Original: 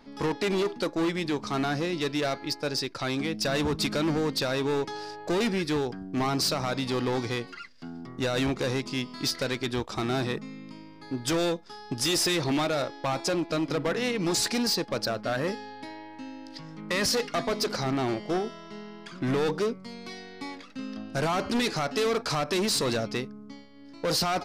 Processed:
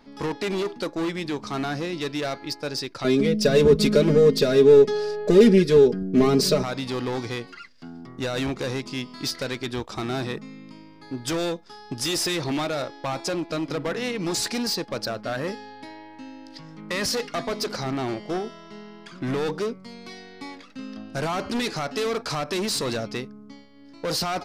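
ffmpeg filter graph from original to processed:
-filter_complex "[0:a]asettb=1/sr,asplit=3[s0][s1][s2];[s0]atrim=end=3.044[s3];[s1]atrim=start=3.04:end=6.63,asetpts=PTS-STARTPTS,afade=t=in:d=0.004:c=qsin,afade=t=out:st=3.586:d=0.004:c=qsin,lowshelf=f=630:t=q:w=3:g=6.5,aecho=1:1:4.8:0.9,atrim=end_sample=158319[s4];[s2]atrim=start=6.626[s5];[s3][s4]acrossfade=d=0.004:c1=hsin:c2=qsin[s6];[s6][s5]acrossfade=d=0.004:c1=qsin:c2=hsin"

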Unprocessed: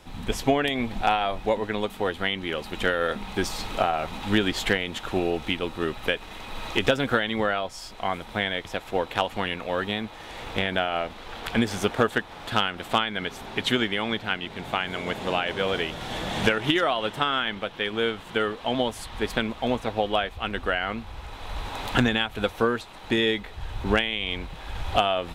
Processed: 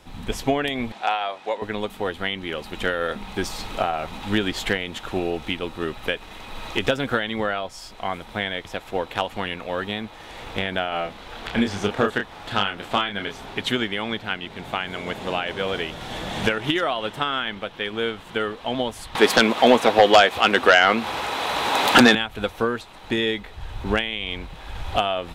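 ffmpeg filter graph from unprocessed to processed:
-filter_complex "[0:a]asettb=1/sr,asplit=3[s0][s1][s2];[s0]atrim=end=0.924[s3];[s1]atrim=start=0.92:end=1.62,asetpts=PTS-STARTPTS,afade=t=in:d=0.004:c=qsin,afade=t=out:st=0.696:d=0.004:c=qsin,aeval=exprs='val(0)+0.0112*(sin(2*PI*50*n/s)+sin(2*PI*2*50*n/s)/2+sin(2*PI*3*50*n/s)/3+sin(2*PI*4*50*n/s)/4+sin(2*PI*5*50*n/s)/5)':c=same,highpass=510,lowpass=8000[s4];[s2]atrim=start=1.616[s5];[s3][s4]acrossfade=d=0.004:c1=hsin:c2=qsin[s6];[s6][s5]acrossfade=d=0.004:c1=qsin:c2=hsin,asettb=1/sr,asplit=3[s7][s8][s9];[s7]atrim=end=10.894[s10];[s8]atrim=start=10.89:end=13.54,asetpts=PTS-STARTPTS,afade=t=in:d=0.004:c=qsin,afade=t=out:st=2.646:d=0.004:c=qsin,asplit=2[s11][s12];[s12]adelay=30,volume=0.562[s13];[s11][s13]amix=inputs=2:normalize=0,atrim=end_sample=116865,acrossover=split=7200[s14][s15];[s15]acompressor=threshold=0.00178:ratio=4:attack=1:release=60[s16];[s14][s16]amix=inputs=2:normalize=0[s17];[s9]atrim=start=13.536[s18];[s10][s17]acrossfade=d=0.004:c1=hsin:c2=qsin[s19];[s19][s18]acrossfade=d=0.004:c1=qsin:c2=hsin,asettb=1/sr,asplit=3[s20][s21][s22];[s20]atrim=end=19.154[s23];[s21]atrim=start=19.15:end=22.15,asetpts=PTS-STARTPTS,afade=t=in:d=0.004:c=qsin,afade=t=out:st=2.996:d=0.004:c=qsin,highpass=280,acompressor=mode=upward:threshold=0.02:ratio=2.5:attack=3.2:release=140:knee=2.83:detection=peak,aeval=exprs='0.562*sin(PI/2*3.16*val(0)/0.562)':c=same[s24];[s22]atrim=start=22.146[s25];[s23][s24]acrossfade=d=0.004:c1=hsin:c2=qsin[s26];[s26][s25]acrossfade=d=0.004:c1=qsin:c2=hsin"

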